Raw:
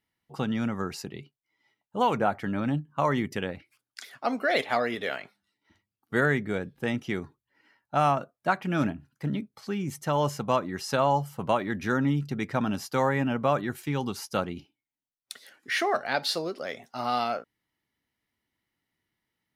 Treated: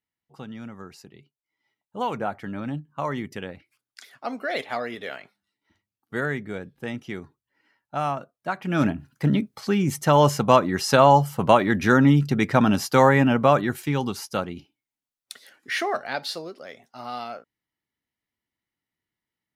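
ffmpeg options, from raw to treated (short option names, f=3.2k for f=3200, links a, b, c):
-af "volume=9dB,afade=t=in:st=1.19:d=0.84:silence=0.473151,afade=t=in:st=8.54:d=0.56:silence=0.251189,afade=t=out:st=13.06:d=1.37:silence=0.398107,afade=t=out:st=15.73:d=0.87:silence=0.446684"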